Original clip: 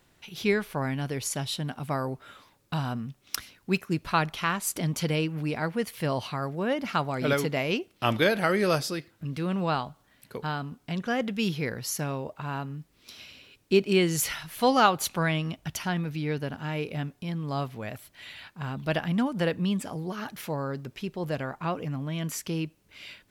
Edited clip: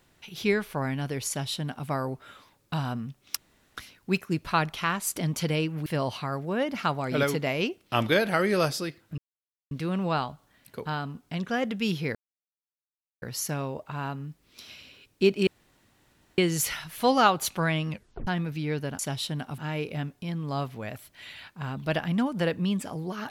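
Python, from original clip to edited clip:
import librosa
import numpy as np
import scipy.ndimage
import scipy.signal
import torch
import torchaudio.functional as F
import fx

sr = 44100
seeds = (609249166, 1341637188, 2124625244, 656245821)

y = fx.edit(x, sr, fx.duplicate(start_s=1.28, length_s=0.59, to_s=16.58),
    fx.insert_room_tone(at_s=3.37, length_s=0.4),
    fx.cut(start_s=5.46, length_s=0.5),
    fx.insert_silence(at_s=9.28, length_s=0.53),
    fx.insert_silence(at_s=11.72, length_s=1.07),
    fx.insert_room_tone(at_s=13.97, length_s=0.91),
    fx.tape_stop(start_s=15.48, length_s=0.38), tone=tone)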